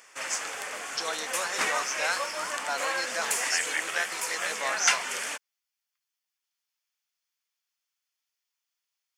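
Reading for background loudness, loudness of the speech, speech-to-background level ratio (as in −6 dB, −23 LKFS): −29.5 LKFS, −33.0 LKFS, −3.5 dB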